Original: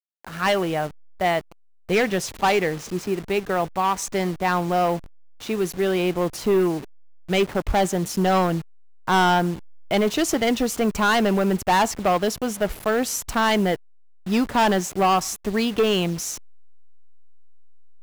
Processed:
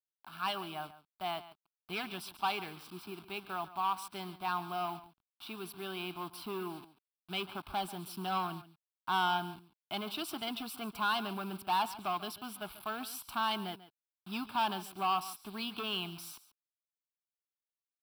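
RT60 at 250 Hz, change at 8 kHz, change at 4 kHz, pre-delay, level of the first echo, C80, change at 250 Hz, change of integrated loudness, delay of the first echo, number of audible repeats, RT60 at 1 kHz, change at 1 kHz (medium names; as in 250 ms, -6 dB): no reverb, -19.5 dB, -9.5 dB, no reverb, -16.0 dB, no reverb, -19.5 dB, -14.5 dB, 140 ms, 1, no reverb, -11.5 dB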